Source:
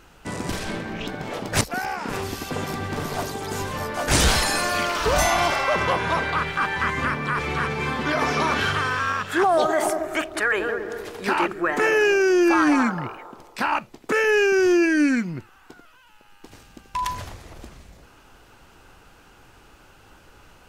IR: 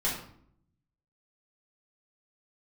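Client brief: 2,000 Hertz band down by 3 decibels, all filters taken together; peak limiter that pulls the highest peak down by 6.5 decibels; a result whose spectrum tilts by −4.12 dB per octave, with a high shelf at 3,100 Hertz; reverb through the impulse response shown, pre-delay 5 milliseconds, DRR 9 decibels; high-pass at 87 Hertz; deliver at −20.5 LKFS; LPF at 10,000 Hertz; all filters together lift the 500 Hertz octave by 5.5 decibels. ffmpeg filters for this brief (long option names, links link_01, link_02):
-filter_complex "[0:a]highpass=87,lowpass=10000,equalizer=frequency=500:width_type=o:gain=8,equalizer=frequency=2000:width_type=o:gain=-3,highshelf=frequency=3100:gain=-5,alimiter=limit=-12.5dB:level=0:latency=1,asplit=2[link_01][link_02];[1:a]atrim=start_sample=2205,adelay=5[link_03];[link_02][link_03]afir=irnorm=-1:irlink=0,volume=-17dB[link_04];[link_01][link_04]amix=inputs=2:normalize=0,volume=1.5dB"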